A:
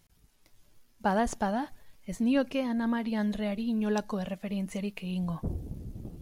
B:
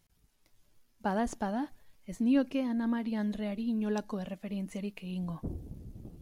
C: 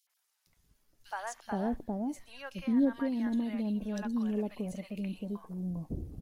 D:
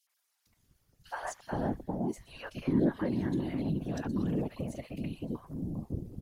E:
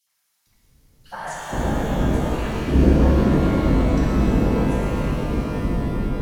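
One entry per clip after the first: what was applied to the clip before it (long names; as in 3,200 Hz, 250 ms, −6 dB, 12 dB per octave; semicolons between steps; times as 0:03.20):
dynamic equaliser 290 Hz, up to +7 dB, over −44 dBFS, Q 2; level −5.5 dB
three-band delay without the direct sound highs, mids, lows 70/470 ms, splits 750/2,900 Hz
random phases in short frames
sub-octave generator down 2 octaves, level +3 dB; reverb with rising layers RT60 3.7 s, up +12 semitones, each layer −8 dB, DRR −6.5 dB; level +3 dB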